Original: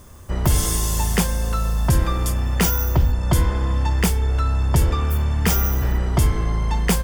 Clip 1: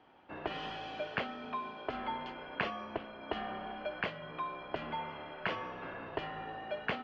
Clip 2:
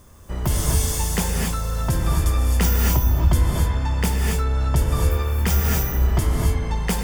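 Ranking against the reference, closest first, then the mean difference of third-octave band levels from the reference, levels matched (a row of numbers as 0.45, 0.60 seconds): 2, 1; 4.5, 12.0 decibels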